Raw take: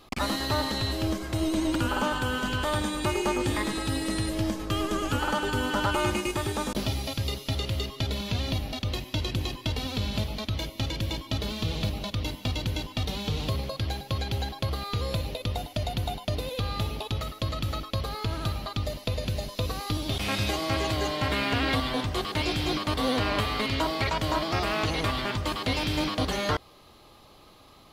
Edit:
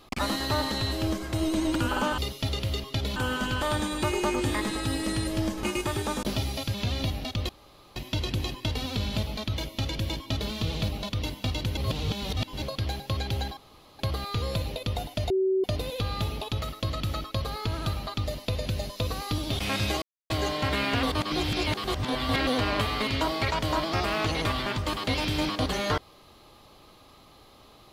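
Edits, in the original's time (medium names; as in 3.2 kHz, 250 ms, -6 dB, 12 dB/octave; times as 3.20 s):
4.65–6.13 s: delete
7.24–8.22 s: move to 2.18 s
8.97 s: insert room tone 0.47 s
12.78–13.63 s: reverse
14.58 s: insert room tone 0.42 s
15.89–16.23 s: bleep 380 Hz -21 dBFS
20.61–20.89 s: mute
21.62–23.06 s: reverse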